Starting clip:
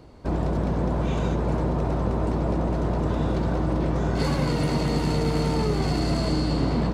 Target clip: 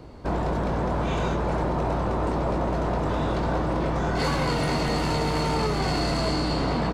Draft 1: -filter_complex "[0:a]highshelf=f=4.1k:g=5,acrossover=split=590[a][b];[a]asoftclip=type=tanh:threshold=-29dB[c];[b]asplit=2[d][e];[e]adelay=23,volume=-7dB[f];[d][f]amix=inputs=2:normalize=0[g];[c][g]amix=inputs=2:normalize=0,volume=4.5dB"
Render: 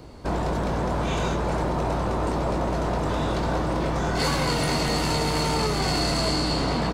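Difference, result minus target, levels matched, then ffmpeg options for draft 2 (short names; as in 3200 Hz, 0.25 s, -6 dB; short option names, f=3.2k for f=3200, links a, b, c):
8000 Hz band +6.5 dB
-filter_complex "[0:a]highshelf=f=4.1k:g=-4.5,acrossover=split=590[a][b];[a]asoftclip=type=tanh:threshold=-29dB[c];[b]asplit=2[d][e];[e]adelay=23,volume=-7dB[f];[d][f]amix=inputs=2:normalize=0[g];[c][g]amix=inputs=2:normalize=0,volume=4.5dB"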